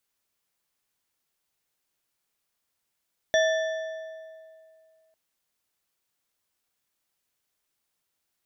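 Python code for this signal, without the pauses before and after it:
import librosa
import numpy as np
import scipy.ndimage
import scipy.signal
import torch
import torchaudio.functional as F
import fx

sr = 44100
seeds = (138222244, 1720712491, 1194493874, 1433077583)

y = fx.strike_metal(sr, length_s=1.8, level_db=-18.5, body='bar', hz=642.0, decay_s=2.36, tilt_db=5.0, modes=4)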